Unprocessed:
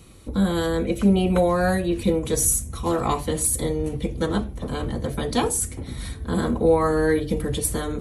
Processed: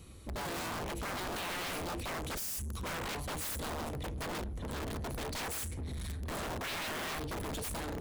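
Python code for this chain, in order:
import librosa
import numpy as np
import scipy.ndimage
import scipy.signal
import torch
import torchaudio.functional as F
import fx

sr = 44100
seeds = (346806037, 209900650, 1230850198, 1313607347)

y = fx.peak_eq(x, sr, hz=75.0, db=9.5, octaves=0.38)
y = (np.mod(10.0 ** (19.5 / 20.0) * y + 1.0, 2.0) - 1.0) / 10.0 ** (19.5 / 20.0)
y = fx.spec_erase(y, sr, start_s=2.39, length_s=0.37, low_hz=240.0, high_hz=4500.0)
y = np.clip(y, -10.0 ** (-31.0 / 20.0), 10.0 ** (-31.0 / 20.0))
y = F.gain(torch.from_numpy(y), -6.0).numpy()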